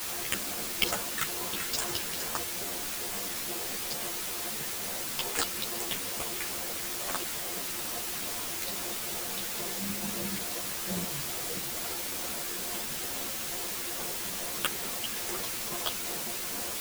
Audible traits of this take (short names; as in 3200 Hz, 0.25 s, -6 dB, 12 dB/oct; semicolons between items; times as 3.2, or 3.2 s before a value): aliases and images of a low sample rate 12000 Hz; phasing stages 4, 2.3 Hz, lowest notch 780–4900 Hz; a quantiser's noise floor 6-bit, dither triangular; a shimmering, thickened sound